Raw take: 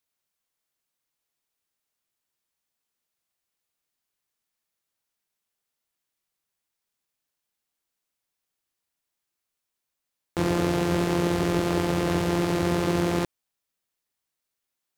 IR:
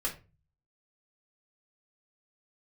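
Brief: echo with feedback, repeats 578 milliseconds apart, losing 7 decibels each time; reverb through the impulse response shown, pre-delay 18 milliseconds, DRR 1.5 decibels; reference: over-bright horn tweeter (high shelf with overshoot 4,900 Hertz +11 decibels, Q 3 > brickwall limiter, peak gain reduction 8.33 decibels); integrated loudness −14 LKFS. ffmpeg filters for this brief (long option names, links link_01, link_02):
-filter_complex "[0:a]aecho=1:1:578|1156|1734|2312|2890:0.447|0.201|0.0905|0.0407|0.0183,asplit=2[link_01][link_02];[1:a]atrim=start_sample=2205,adelay=18[link_03];[link_02][link_03]afir=irnorm=-1:irlink=0,volume=-5.5dB[link_04];[link_01][link_04]amix=inputs=2:normalize=0,highshelf=frequency=4900:width_type=q:width=3:gain=11,volume=13.5dB,alimiter=limit=-1dB:level=0:latency=1"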